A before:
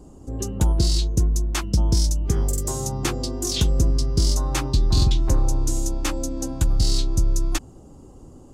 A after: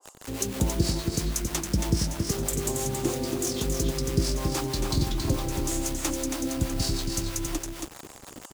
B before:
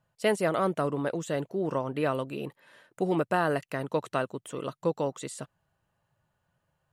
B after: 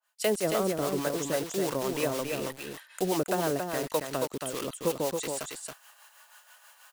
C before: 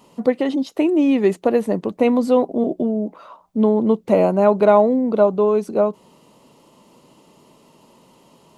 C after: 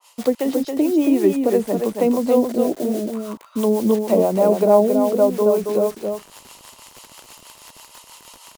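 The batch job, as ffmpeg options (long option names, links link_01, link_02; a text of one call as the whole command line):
ffmpeg -i in.wav -filter_complex "[0:a]areverse,acompressor=mode=upward:threshold=-37dB:ratio=2.5,areverse,highpass=frequency=230:poles=1,acrossover=split=770[link_01][link_02];[link_01]acrusher=bits=6:mix=0:aa=0.000001[link_03];[link_02]acompressor=threshold=-39dB:ratio=6[link_04];[link_03][link_04]amix=inputs=2:normalize=0,highshelf=frequency=3500:gain=10.5,acrossover=split=480[link_05][link_06];[link_05]aeval=exprs='val(0)*(1-0.7/2+0.7/2*cos(2*PI*6.2*n/s))':channel_layout=same[link_07];[link_06]aeval=exprs='val(0)*(1-0.7/2-0.7/2*cos(2*PI*6.2*n/s))':channel_layout=same[link_08];[link_07][link_08]amix=inputs=2:normalize=0,aecho=1:1:275:0.562,adynamicequalizer=threshold=0.00708:dfrequency=2200:dqfactor=0.7:tfrequency=2200:tqfactor=0.7:attack=5:release=100:ratio=0.375:range=2:mode=cutabove:tftype=highshelf,volume=4dB" out.wav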